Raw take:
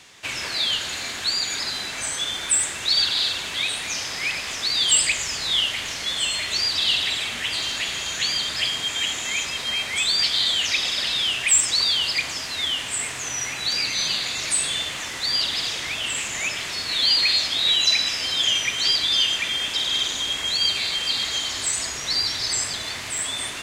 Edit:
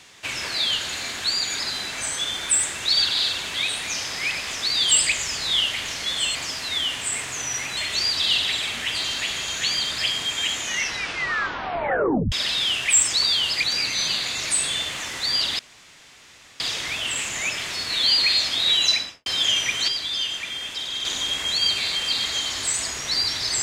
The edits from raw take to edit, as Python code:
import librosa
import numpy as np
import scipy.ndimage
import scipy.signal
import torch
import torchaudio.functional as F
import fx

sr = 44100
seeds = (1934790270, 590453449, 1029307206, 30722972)

y = fx.studio_fade_out(x, sr, start_s=17.87, length_s=0.38)
y = fx.edit(y, sr, fx.tape_stop(start_s=9.16, length_s=1.74),
    fx.move(start_s=12.22, length_s=1.42, to_s=6.35),
    fx.insert_room_tone(at_s=15.59, length_s=1.01),
    fx.clip_gain(start_s=18.87, length_s=1.17, db=-6.0), tone=tone)